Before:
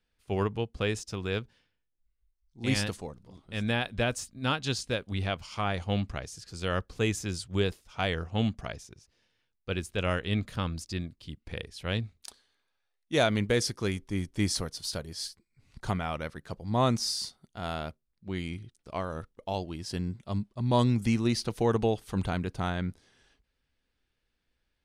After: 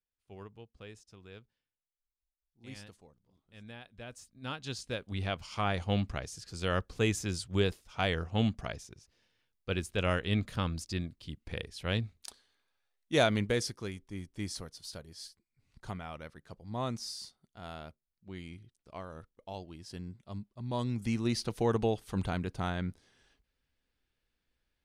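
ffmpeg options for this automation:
-af "volume=2,afade=t=in:st=3.99:d=0.73:silence=0.281838,afade=t=in:st=4.72:d=0.92:silence=0.421697,afade=t=out:st=13.2:d=0.71:silence=0.354813,afade=t=in:st=20.82:d=0.58:silence=0.446684"

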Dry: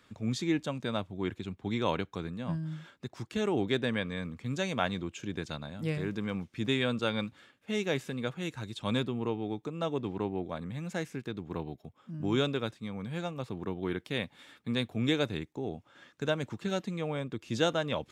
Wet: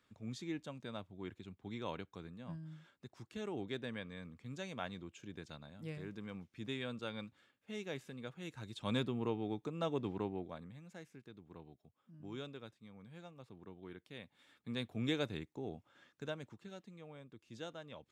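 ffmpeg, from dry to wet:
-af "volume=1.88,afade=t=in:st=8.34:d=0.73:silence=0.398107,afade=t=out:st=10.08:d=0.74:silence=0.223872,afade=t=in:st=14.23:d=0.76:silence=0.316228,afade=t=out:st=15.74:d=0.97:silence=0.266073"

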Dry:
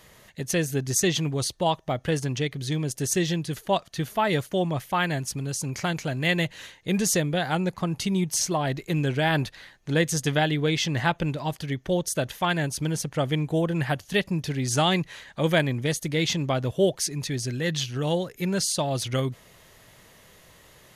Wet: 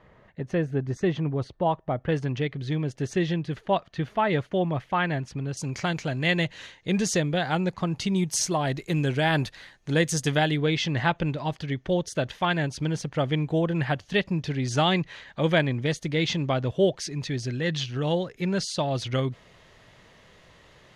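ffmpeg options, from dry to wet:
-af "asetnsamples=n=441:p=0,asendcmd='2.09 lowpass f 2700;5.57 lowpass f 5900;8.16 lowpass f 9900;10.58 lowpass f 4500',lowpass=1500"

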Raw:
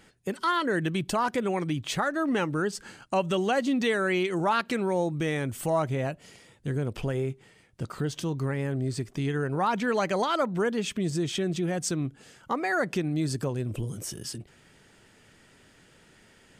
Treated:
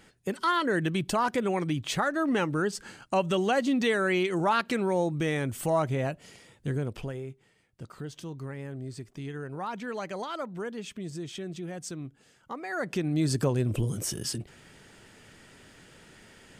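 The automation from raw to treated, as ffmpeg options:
-af "volume=4.47,afade=t=out:st=6.68:d=0.52:silence=0.354813,afade=t=in:st=12.67:d=0.77:silence=0.223872"

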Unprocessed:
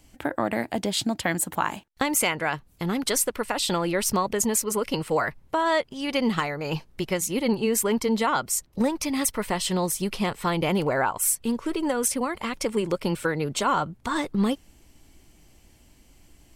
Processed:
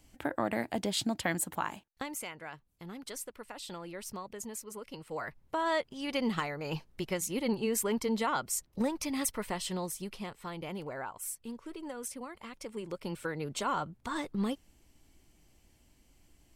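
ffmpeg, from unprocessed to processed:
-af "volume=3.76,afade=t=out:st=1.28:d=0.94:silence=0.251189,afade=t=in:st=5.04:d=0.6:silence=0.298538,afade=t=out:st=9.25:d=1.1:silence=0.375837,afade=t=in:st=12.68:d=0.88:silence=0.446684"

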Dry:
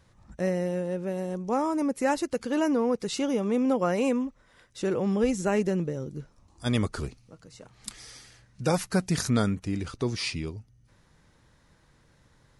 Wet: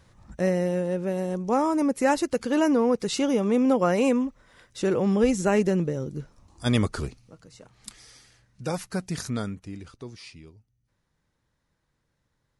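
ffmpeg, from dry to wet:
-af "volume=1.5,afade=t=out:st=6.72:d=1.32:silence=0.398107,afade=t=out:st=9.2:d=1.03:silence=0.334965"

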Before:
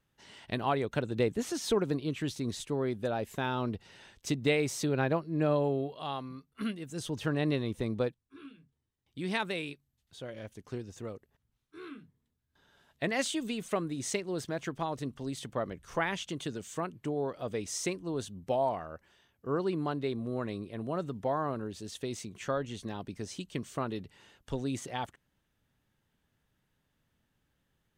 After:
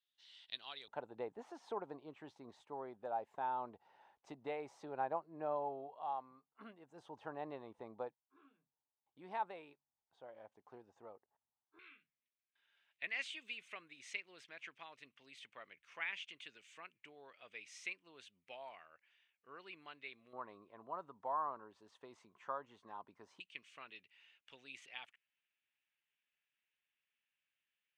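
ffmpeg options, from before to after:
-af "asetnsamples=n=441:p=0,asendcmd='0.88 bandpass f 840;11.79 bandpass f 2400;20.33 bandpass f 1000;23.4 bandpass f 2500',bandpass=f=3700:t=q:w=4.2:csg=0"

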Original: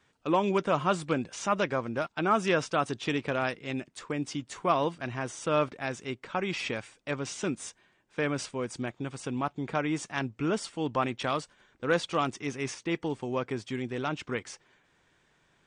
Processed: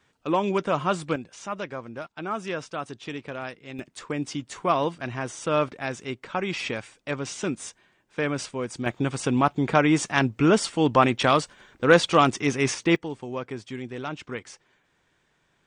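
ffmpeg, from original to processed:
-af "asetnsamples=n=441:p=0,asendcmd='1.16 volume volume -5dB;3.79 volume volume 3dB;8.86 volume volume 10dB;12.96 volume volume -1dB',volume=1.26"

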